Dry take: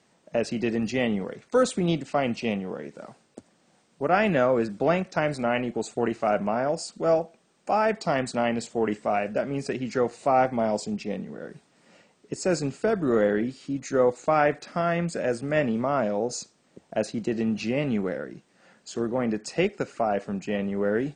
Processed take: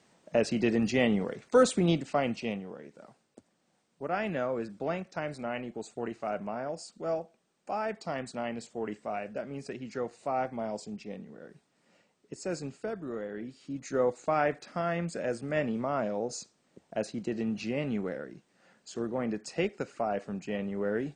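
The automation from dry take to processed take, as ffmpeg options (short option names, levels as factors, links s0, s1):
-af "volume=3.35,afade=t=out:st=1.76:d=0.97:silence=0.334965,afade=t=out:st=12.7:d=0.58:silence=0.446684,afade=t=in:st=13.28:d=0.6:silence=0.281838"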